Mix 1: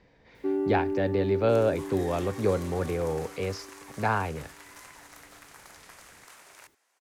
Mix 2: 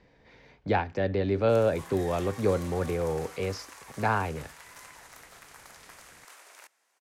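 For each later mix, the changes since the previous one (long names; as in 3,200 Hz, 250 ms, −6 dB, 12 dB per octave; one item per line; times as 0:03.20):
first sound: muted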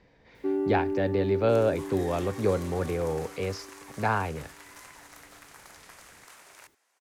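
first sound: unmuted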